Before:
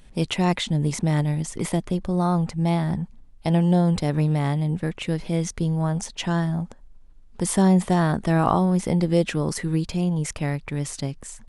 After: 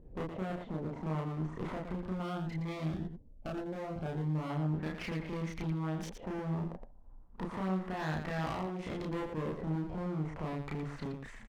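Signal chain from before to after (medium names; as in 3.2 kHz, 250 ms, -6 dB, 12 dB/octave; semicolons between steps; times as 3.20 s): compression 12:1, threshold -26 dBFS, peak gain reduction 13 dB; flange 0.24 Hz, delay 2.3 ms, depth 2.6 ms, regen -82%; LFO low-pass saw up 0.33 Hz 440–3400 Hz; one-sided clip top -48.5 dBFS, bottom -31 dBFS; loudspeakers at several distances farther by 11 m 0 dB, 40 m -6 dB; 2.22–4.50 s: Shepard-style phaser rising 1.8 Hz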